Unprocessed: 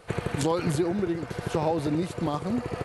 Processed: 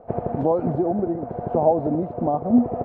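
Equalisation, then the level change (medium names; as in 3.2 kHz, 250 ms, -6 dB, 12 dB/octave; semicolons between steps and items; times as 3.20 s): resonant low-pass 690 Hz, resonance Q 4.5; peaking EQ 240 Hz +14.5 dB 0.2 oct; 0.0 dB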